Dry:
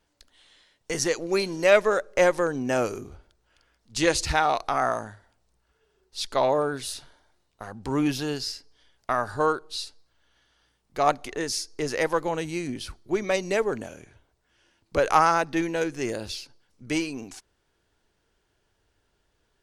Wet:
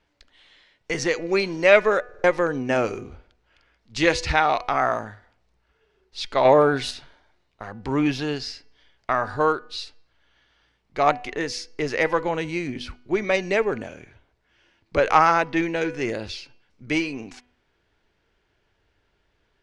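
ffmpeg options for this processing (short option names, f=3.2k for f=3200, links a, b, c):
-filter_complex "[0:a]asettb=1/sr,asplit=3[a][b][c];[a]atrim=end=6.454[d];[b]atrim=start=6.45:end=6.91,asetpts=PTS-STARTPTS,afade=t=in:d=0.004:c=qsin,afade=t=out:st=0.456:d=0.004:c=qsin,acontrast=49[e];[c]atrim=start=6.906[f];[d][e]acrossfade=d=0.004:c1=hsin:c2=qsin[g];[g][f]acrossfade=d=0.004:c1=qsin:c2=hsin,asplit=5[h][i][j][k][l];[h]atrim=end=2.092[m];[i]atrim=start=2.038:end=2.092[n];[j]atrim=start=2.038:end=2.092[o];[k]atrim=start=2.038:end=2.092[p];[l]atrim=start=2.238[q];[m][n]acrossfade=d=0.004:c1=hsin:c2=hsin[r];[r][o]acrossfade=d=0.004:c1=hsin:c2=hsin[s];[s][p]acrossfade=d=0.004:c1=hsin:c2=hsin[t];[t][q]acrossfade=d=0.004:c1=hsin:c2=hsin,lowpass=4.5k,equalizer=f=2.2k:w=2.5:g=5,bandreject=f=246:t=h:w=4,bandreject=f=492:t=h:w=4,bandreject=f=738:t=h:w=4,bandreject=f=984:t=h:w=4,bandreject=f=1.23k:t=h:w=4,bandreject=f=1.476k:t=h:w=4,bandreject=f=1.722k:t=h:w=4,bandreject=f=1.968k:t=h:w=4,bandreject=f=2.214k:t=h:w=4,bandreject=f=2.46k:t=h:w=4,bandreject=f=2.706k:t=h:w=4,bandreject=f=2.952k:t=h:w=4,bandreject=f=3.198k:t=h:w=4,volume=2.5dB"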